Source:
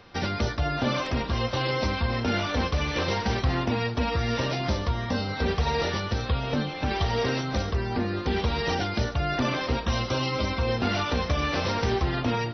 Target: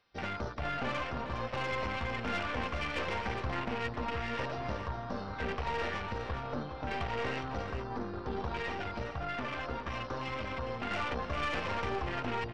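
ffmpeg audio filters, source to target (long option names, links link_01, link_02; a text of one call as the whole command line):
ffmpeg -i in.wav -filter_complex "[0:a]afwtdn=0.0251,tiltshelf=frequency=640:gain=-5.5,asettb=1/sr,asplit=3[link_01][link_02][link_03];[link_01]atrim=end=8.624[link_04];[link_02]atrim=start=8.62:end=10.91,asetpts=PTS-STARTPTS,afade=type=in:duration=0.004:curve=qsin,afade=type=out:start_time=2.286:duration=0.004:curve=qsin,acompressor=threshold=-26dB:ratio=6[link_05];[link_03]atrim=start=10.906[link_06];[link_04][link_05]acrossfade=duration=0.004:curve1=hsin:curve2=qsin[link_07];[link_07][link_06]acrossfade=duration=0.004:curve1=qsin:curve2=hsin,aeval=exprs='(tanh(14.1*val(0)+0.6)-tanh(0.6))/14.1':channel_layout=same,aecho=1:1:412:0.355,volume=-4.5dB" out.wav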